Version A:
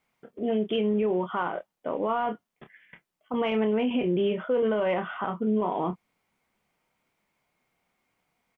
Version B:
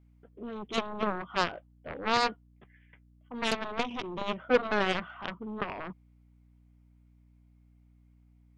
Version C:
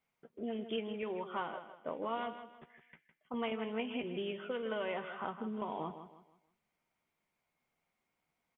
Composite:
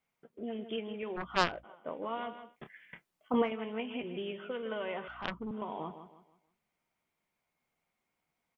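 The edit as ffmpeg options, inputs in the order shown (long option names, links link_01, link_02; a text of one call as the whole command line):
ffmpeg -i take0.wav -i take1.wav -i take2.wav -filter_complex "[1:a]asplit=2[link_01][link_02];[2:a]asplit=4[link_03][link_04][link_05][link_06];[link_03]atrim=end=1.18[link_07];[link_01]atrim=start=1.16:end=1.65[link_08];[link_04]atrim=start=1.63:end=2.57[link_09];[0:a]atrim=start=2.47:end=3.51[link_10];[link_05]atrim=start=3.41:end=5.082[link_11];[link_02]atrim=start=5.078:end=5.512[link_12];[link_06]atrim=start=5.508[link_13];[link_07][link_08]acrossfade=duration=0.02:curve1=tri:curve2=tri[link_14];[link_14][link_09]acrossfade=duration=0.02:curve1=tri:curve2=tri[link_15];[link_15][link_10]acrossfade=duration=0.1:curve1=tri:curve2=tri[link_16];[link_16][link_11]acrossfade=duration=0.1:curve1=tri:curve2=tri[link_17];[link_17][link_12]acrossfade=duration=0.004:curve1=hsin:curve2=hsin[link_18];[link_18][link_13]acrossfade=duration=0.004:curve1=hsin:curve2=hsin" out.wav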